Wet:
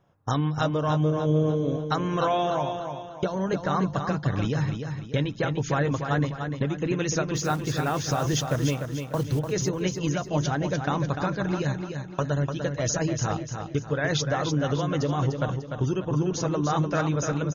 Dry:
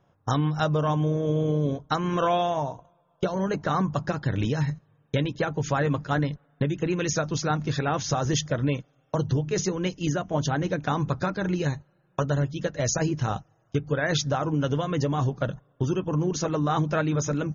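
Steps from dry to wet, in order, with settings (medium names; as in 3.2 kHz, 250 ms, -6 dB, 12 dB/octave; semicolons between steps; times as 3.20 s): 7.35–9.41 s: block-companded coder 5-bit; feedback delay 297 ms, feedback 40%, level -6.5 dB; trim -1 dB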